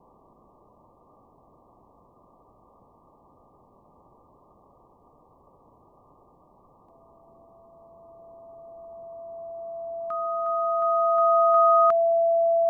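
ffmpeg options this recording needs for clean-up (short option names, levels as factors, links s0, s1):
-af "bandreject=f=670:w=30,afwtdn=0.0056"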